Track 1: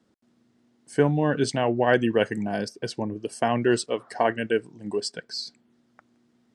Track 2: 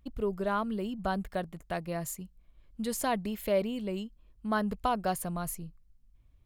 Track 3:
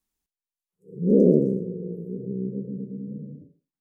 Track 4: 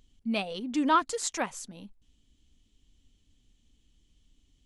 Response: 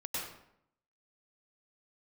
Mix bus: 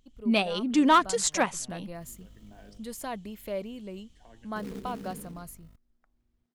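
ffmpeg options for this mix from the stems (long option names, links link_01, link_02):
-filter_complex "[0:a]bandreject=frequency=101:width_type=h:width=4,bandreject=frequency=202:width_type=h:width=4,bandreject=frequency=303:width_type=h:width=4,bandreject=frequency=404:width_type=h:width=4,bandreject=frequency=505:width_type=h:width=4,bandreject=frequency=606:width_type=h:width=4,bandreject=frequency=707:width_type=h:width=4,bandreject=frequency=808:width_type=h:width=4,bandreject=frequency=909:width_type=h:width=4,bandreject=frequency=1010:width_type=h:width=4,bandreject=frequency=1111:width_type=h:width=4,acrossover=split=210[link_01][link_02];[link_02]acompressor=threshold=-33dB:ratio=6[link_03];[link_01][link_03]amix=inputs=2:normalize=0,adelay=50,volume=-17.5dB[link_04];[1:a]dynaudnorm=framelen=300:gausssize=9:maxgain=6.5dB,volume=-12.5dB,asplit=2[link_05][link_06];[2:a]highpass=260,aeval=exprs='val(0)+0.002*(sin(2*PI*50*n/s)+sin(2*PI*2*50*n/s)/2+sin(2*PI*3*50*n/s)/3+sin(2*PI*4*50*n/s)/4+sin(2*PI*5*50*n/s)/5)':channel_layout=same,acrusher=bits=3:mode=log:mix=0:aa=0.000001,adelay=1950,volume=-1dB,asplit=3[link_07][link_08][link_09];[link_07]atrim=end=2.78,asetpts=PTS-STARTPTS,afade=type=out:start_time=2.776:duration=0.004:curve=hsin[link_10];[link_08]atrim=start=2.78:end=4.56,asetpts=PTS-STARTPTS,volume=0[link_11];[link_09]atrim=start=4.56,asetpts=PTS-STARTPTS,afade=type=in:duration=0.004:curve=hsin[link_12];[link_10][link_11][link_12]concat=n=3:v=0:a=1[link_13];[3:a]dynaudnorm=framelen=130:gausssize=3:maxgain=11dB,asoftclip=type=hard:threshold=-9dB,volume=-5dB[link_14];[link_06]apad=whole_len=290884[link_15];[link_04][link_15]sidechaincompress=threshold=-55dB:ratio=8:attack=16:release=333[link_16];[link_16][link_05][link_13][link_14]amix=inputs=4:normalize=0"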